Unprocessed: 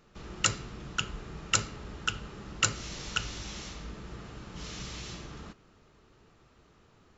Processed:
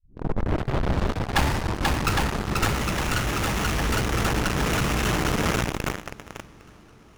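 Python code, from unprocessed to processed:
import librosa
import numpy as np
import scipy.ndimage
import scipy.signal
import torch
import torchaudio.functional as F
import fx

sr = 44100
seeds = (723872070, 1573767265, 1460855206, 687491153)

p1 = fx.tape_start_head(x, sr, length_s=2.24)
p2 = fx.echo_swing(p1, sr, ms=809, ratio=1.5, feedback_pct=48, wet_db=-6.0)
p3 = fx.fuzz(p2, sr, gain_db=46.0, gate_db=-41.0)
p4 = p2 + (p3 * 10.0 ** (-6.5 / 20.0))
p5 = fx.rider(p4, sr, range_db=4, speed_s=0.5)
y = fx.running_max(p5, sr, window=9)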